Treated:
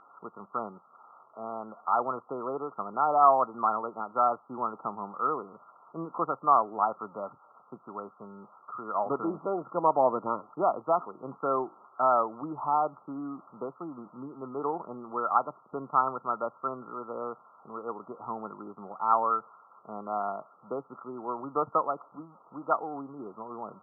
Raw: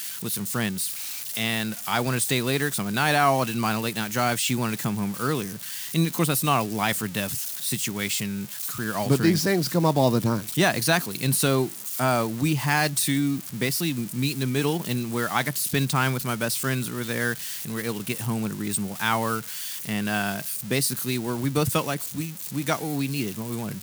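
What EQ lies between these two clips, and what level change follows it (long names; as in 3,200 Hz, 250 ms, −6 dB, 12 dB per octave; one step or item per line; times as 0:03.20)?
Bessel high-pass filter 1,000 Hz, order 2
linear-phase brick-wall low-pass 1,400 Hz
high-frequency loss of the air 99 metres
+6.0 dB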